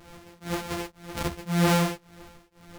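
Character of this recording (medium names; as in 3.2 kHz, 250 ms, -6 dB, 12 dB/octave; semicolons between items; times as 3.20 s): a buzz of ramps at a fixed pitch in blocks of 256 samples; tremolo triangle 1.9 Hz, depth 100%; a shimmering, thickened sound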